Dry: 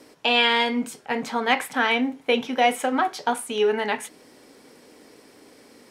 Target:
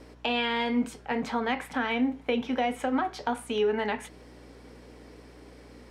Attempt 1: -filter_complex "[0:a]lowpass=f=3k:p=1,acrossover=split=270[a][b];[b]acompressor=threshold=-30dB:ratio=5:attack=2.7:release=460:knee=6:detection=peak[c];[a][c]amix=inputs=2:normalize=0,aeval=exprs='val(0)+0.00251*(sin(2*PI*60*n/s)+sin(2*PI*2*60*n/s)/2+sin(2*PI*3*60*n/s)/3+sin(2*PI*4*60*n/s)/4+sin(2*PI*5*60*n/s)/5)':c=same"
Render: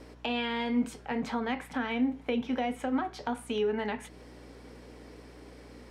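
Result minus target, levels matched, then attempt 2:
compressor: peak gain reduction +5 dB
-filter_complex "[0:a]lowpass=f=3k:p=1,acrossover=split=270[a][b];[b]acompressor=threshold=-23.5dB:ratio=5:attack=2.7:release=460:knee=6:detection=peak[c];[a][c]amix=inputs=2:normalize=0,aeval=exprs='val(0)+0.00251*(sin(2*PI*60*n/s)+sin(2*PI*2*60*n/s)/2+sin(2*PI*3*60*n/s)/3+sin(2*PI*4*60*n/s)/4+sin(2*PI*5*60*n/s)/5)':c=same"

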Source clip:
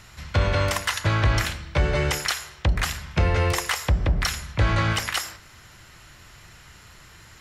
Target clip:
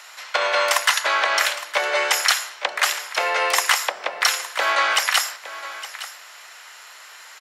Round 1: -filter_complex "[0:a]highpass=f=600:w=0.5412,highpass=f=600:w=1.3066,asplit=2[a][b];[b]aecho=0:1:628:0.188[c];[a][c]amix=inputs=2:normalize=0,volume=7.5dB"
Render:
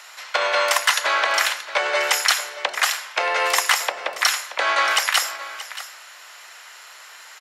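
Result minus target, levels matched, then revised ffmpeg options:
echo 0.235 s early
-filter_complex "[0:a]highpass=f=600:w=0.5412,highpass=f=600:w=1.3066,asplit=2[a][b];[b]aecho=0:1:863:0.188[c];[a][c]amix=inputs=2:normalize=0,volume=7.5dB"

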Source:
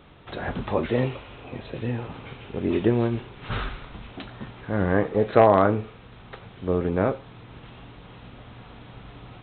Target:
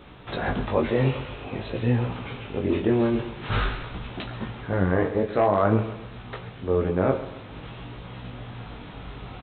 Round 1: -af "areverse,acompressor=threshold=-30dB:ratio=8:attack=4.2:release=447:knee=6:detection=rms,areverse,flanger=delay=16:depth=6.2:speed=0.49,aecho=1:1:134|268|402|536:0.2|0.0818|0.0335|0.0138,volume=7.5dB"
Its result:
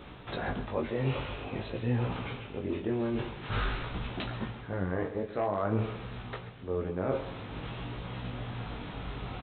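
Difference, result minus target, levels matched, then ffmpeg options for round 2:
compressor: peak gain reduction +10 dB
-af "areverse,acompressor=threshold=-18.5dB:ratio=8:attack=4.2:release=447:knee=6:detection=rms,areverse,flanger=delay=16:depth=6.2:speed=0.49,aecho=1:1:134|268|402|536:0.2|0.0818|0.0335|0.0138,volume=7.5dB"

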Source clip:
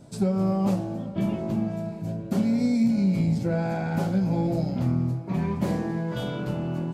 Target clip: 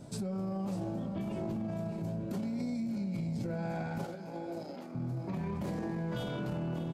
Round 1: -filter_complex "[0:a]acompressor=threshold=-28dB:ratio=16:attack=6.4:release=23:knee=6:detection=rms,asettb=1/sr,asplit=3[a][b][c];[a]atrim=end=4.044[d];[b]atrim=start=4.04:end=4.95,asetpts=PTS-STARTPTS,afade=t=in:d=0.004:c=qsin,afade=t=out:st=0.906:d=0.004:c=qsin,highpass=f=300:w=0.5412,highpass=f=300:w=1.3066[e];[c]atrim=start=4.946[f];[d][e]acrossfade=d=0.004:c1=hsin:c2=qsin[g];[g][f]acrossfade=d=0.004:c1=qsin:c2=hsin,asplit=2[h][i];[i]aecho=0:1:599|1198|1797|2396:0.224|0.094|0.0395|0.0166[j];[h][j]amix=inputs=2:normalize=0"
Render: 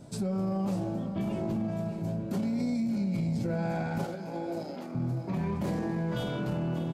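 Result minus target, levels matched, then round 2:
compressor: peak gain reduction -5.5 dB
-filter_complex "[0:a]acompressor=threshold=-34dB:ratio=16:attack=6.4:release=23:knee=6:detection=rms,asettb=1/sr,asplit=3[a][b][c];[a]atrim=end=4.044[d];[b]atrim=start=4.04:end=4.95,asetpts=PTS-STARTPTS,afade=t=in:d=0.004:c=qsin,afade=t=out:st=0.906:d=0.004:c=qsin,highpass=f=300:w=0.5412,highpass=f=300:w=1.3066[e];[c]atrim=start=4.946[f];[d][e]acrossfade=d=0.004:c1=hsin:c2=qsin[g];[g][f]acrossfade=d=0.004:c1=qsin:c2=hsin,asplit=2[h][i];[i]aecho=0:1:599|1198|1797|2396:0.224|0.094|0.0395|0.0166[j];[h][j]amix=inputs=2:normalize=0"

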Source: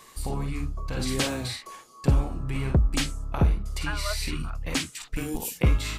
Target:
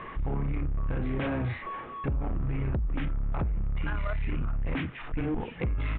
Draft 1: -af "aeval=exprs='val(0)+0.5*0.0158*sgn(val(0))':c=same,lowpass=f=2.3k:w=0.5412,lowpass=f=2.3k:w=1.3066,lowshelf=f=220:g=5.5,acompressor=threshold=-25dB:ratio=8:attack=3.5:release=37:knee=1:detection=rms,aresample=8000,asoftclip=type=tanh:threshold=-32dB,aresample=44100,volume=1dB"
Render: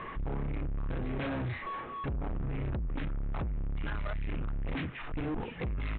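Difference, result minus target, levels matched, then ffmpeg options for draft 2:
soft clip: distortion +10 dB
-af "aeval=exprs='val(0)+0.5*0.0158*sgn(val(0))':c=same,lowpass=f=2.3k:w=0.5412,lowpass=f=2.3k:w=1.3066,lowshelf=f=220:g=5.5,acompressor=threshold=-25dB:ratio=8:attack=3.5:release=37:knee=1:detection=rms,aresample=8000,asoftclip=type=tanh:threshold=-23.5dB,aresample=44100,volume=1dB"

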